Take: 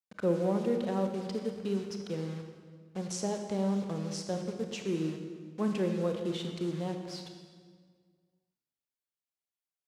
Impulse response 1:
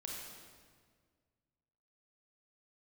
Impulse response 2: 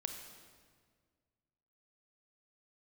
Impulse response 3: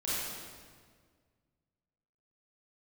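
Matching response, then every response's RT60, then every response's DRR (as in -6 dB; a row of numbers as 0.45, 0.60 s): 2; 1.8, 1.8, 1.8 s; -2.5, 4.5, -10.5 dB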